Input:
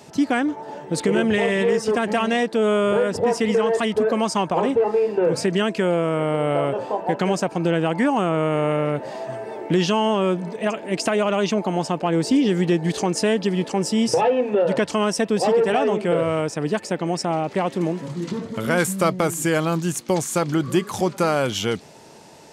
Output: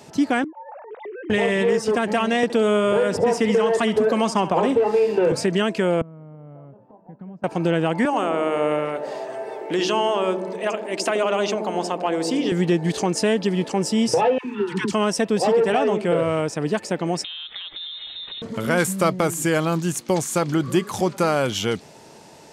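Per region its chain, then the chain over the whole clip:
0.44–1.3 sine-wave speech + LPF 2500 Hz + compressor 4:1, threshold -35 dBFS
2.43–5.32 flutter echo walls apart 11.5 m, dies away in 0.27 s + three-band squash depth 70%
6.01–7.44 LPF 1100 Hz + flipped gate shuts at -22 dBFS, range -24 dB + resonant low shelf 280 Hz +9 dB, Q 1.5
8.05–12.52 HPF 370 Hz + dark delay 79 ms, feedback 67%, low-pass 520 Hz, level -4 dB
14.38–14.93 Chebyshev band-stop 390–930 Hz, order 3 + dispersion lows, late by 72 ms, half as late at 660 Hz
17.24–18.42 steep high-pass 170 Hz + compressor, threshold -31 dBFS + inverted band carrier 3900 Hz
whole clip: dry

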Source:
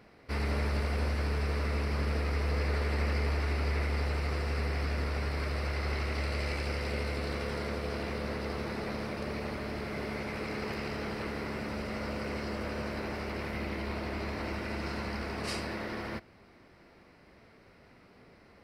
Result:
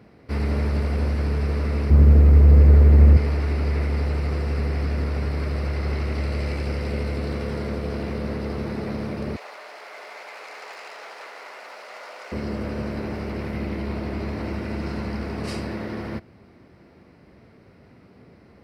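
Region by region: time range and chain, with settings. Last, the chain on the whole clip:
1.9–3.17 tilt -3 dB/oct + requantised 10-bit, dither triangular
9.36–12.32 self-modulated delay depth 0.094 ms + HPF 670 Hz 24 dB/oct
whole clip: HPF 71 Hz; low shelf 480 Hz +11.5 dB

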